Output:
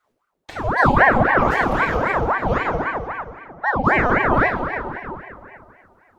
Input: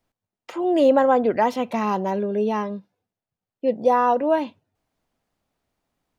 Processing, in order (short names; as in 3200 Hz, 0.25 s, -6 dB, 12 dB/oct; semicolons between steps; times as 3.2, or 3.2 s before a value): low shelf 170 Hz +11.5 dB; notch comb 390 Hz; plate-style reverb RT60 2.4 s, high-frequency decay 0.65×, DRR -2 dB; in parallel at -3 dB: compressor, threshold -25 dBFS, peak gain reduction 17.5 dB; on the sum: ring modulator with a swept carrier 810 Hz, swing 70%, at 3.8 Hz; gain -1 dB